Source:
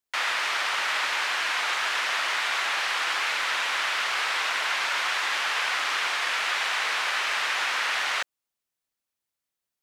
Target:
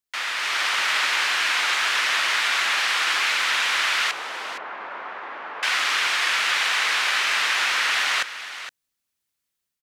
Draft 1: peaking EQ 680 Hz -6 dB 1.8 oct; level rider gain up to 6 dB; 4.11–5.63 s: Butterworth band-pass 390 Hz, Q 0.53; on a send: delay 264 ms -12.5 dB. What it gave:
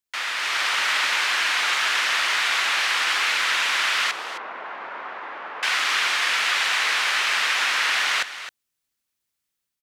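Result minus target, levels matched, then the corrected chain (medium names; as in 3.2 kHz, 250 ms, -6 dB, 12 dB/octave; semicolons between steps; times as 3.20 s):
echo 201 ms early
peaking EQ 680 Hz -6 dB 1.8 oct; level rider gain up to 6 dB; 4.11–5.63 s: Butterworth band-pass 390 Hz, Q 0.53; on a send: delay 465 ms -12.5 dB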